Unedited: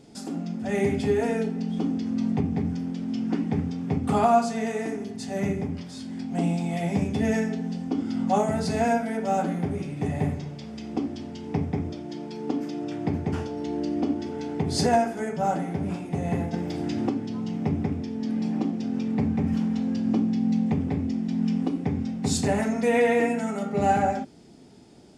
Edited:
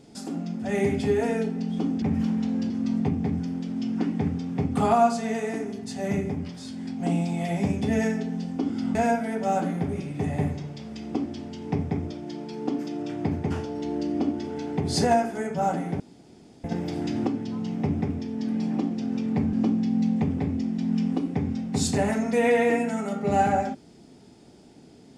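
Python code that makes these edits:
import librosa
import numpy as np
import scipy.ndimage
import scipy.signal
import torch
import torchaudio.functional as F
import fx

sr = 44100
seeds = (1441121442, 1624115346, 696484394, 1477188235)

y = fx.edit(x, sr, fx.cut(start_s=8.27, length_s=0.5),
    fx.room_tone_fill(start_s=15.82, length_s=0.64),
    fx.move(start_s=19.35, length_s=0.68, to_s=2.02), tone=tone)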